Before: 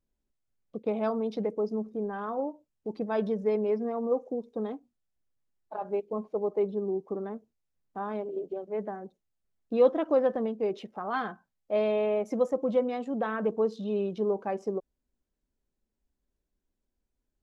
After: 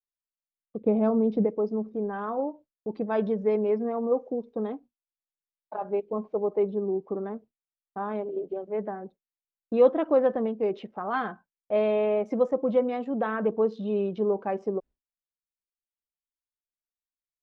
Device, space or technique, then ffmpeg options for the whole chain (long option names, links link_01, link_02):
hearing-loss simulation: -filter_complex "[0:a]asplit=3[link_01][link_02][link_03];[link_01]afade=type=out:start_time=0.8:duration=0.02[link_04];[link_02]tiltshelf=frequency=650:gain=8.5,afade=type=in:start_time=0.8:duration=0.02,afade=type=out:start_time=1.46:duration=0.02[link_05];[link_03]afade=type=in:start_time=1.46:duration=0.02[link_06];[link_04][link_05][link_06]amix=inputs=3:normalize=0,lowpass=3200,agate=range=-33dB:threshold=-45dB:ratio=3:detection=peak,volume=2.5dB"